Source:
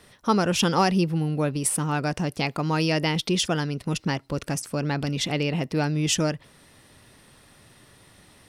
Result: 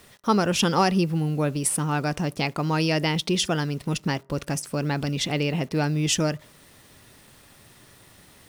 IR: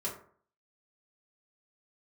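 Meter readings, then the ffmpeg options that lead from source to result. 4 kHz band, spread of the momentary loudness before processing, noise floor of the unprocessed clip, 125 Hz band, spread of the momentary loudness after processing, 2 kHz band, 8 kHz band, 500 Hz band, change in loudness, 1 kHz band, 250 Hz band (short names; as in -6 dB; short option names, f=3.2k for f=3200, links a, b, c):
+0.5 dB, 7 LU, -55 dBFS, +0.5 dB, 7 LU, +0.5 dB, +0.5 dB, +0.5 dB, +0.5 dB, +0.5 dB, 0.0 dB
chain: -filter_complex "[0:a]acrusher=bits=8:mix=0:aa=0.000001,asplit=2[a][b];[1:a]atrim=start_sample=2205[c];[b][c]afir=irnorm=-1:irlink=0,volume=-25dB[d];[a][d]amix=inputs=2:normalize=0"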